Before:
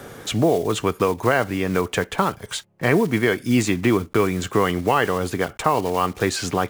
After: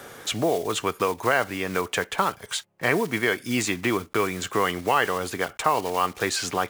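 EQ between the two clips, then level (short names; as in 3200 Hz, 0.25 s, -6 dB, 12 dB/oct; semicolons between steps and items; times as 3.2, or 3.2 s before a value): low shelf 420 Hz -11 dB; 0.0 dB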